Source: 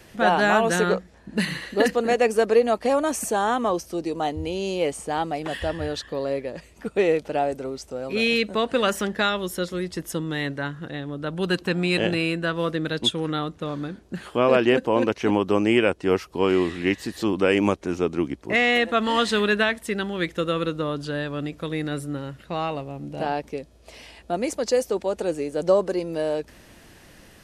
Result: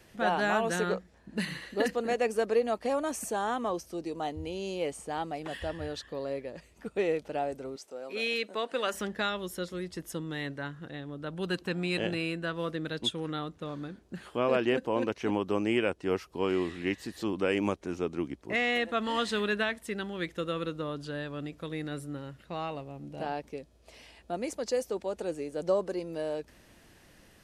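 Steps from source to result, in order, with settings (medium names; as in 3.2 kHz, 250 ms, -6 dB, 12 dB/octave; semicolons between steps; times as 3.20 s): 7.76–8.94 s: high-pass 340 Hz 12 dB/octave; trim -8.5 dB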